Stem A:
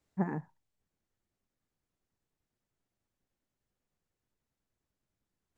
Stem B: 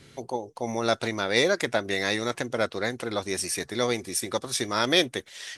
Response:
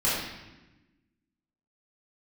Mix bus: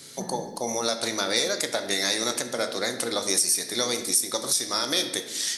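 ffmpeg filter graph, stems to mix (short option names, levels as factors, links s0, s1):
-filter_complex "[0:a]volume=0.335,asplit=2[s0][s1];[s1]volume=0.266[s2];[1:a]highpass=190,acompressor=threshold=0.0501:ratio=6,aexciter=amount=6:drive=1:freq=3900,volume=1.19,asplit=2[s3][s4];[s4]volume=0.119[s5];[2:a]atrim=start_sample=2205[s6];[s2][s5]amix=inputs=2:normalize=0[s7];[s7][s6]afir=irnorm=-1:irlink=0[s8];[s0][s3][s8]amix=inputs=3:normalize=0,alimiter=limit=0.299:level=0:latency=1:release=271"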